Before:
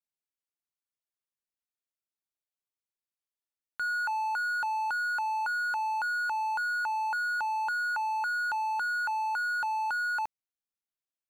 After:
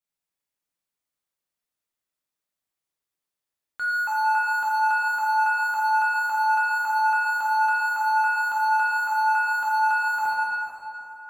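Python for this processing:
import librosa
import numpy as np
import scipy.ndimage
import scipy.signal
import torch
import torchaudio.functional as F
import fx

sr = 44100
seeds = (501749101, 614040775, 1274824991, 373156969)

y = fx.rev_plate(x, sr, seeds[0], rt60_s=3.1, hf_ratio=0.65, predelay_ms=0, drr_db=-7.0)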